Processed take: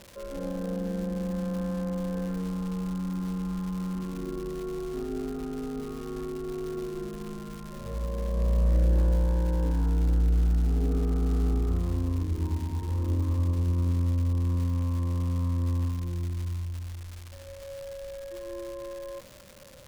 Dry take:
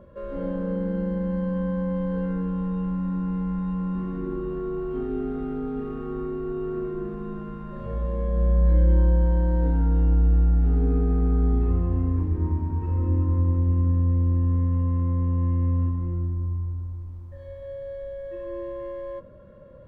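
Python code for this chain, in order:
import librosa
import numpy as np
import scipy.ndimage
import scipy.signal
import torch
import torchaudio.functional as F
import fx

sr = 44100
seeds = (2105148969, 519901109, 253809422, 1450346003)

y = fx.dmg_crackle(x, sr, seeds[0], per_s=370.0, level_db=-31.0)
y = fx.doppler_dist(y, sr, depth_ms=0.38)
y = y * librosa.db_to_amplitude(-4.5)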